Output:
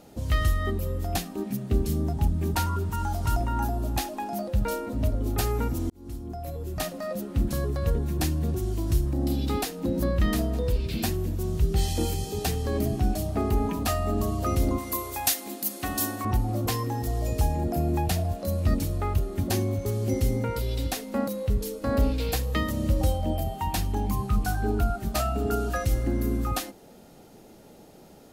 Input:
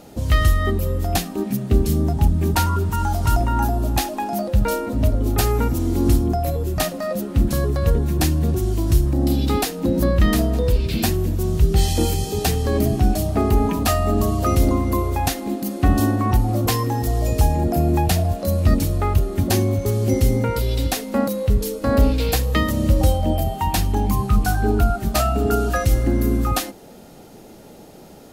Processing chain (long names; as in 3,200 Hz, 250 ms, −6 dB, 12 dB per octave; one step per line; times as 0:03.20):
0:05.90–0:06.98: fade in
0:14.78–0:16.25: spectral tilt +3.5 dB per octave
level −7.5 dB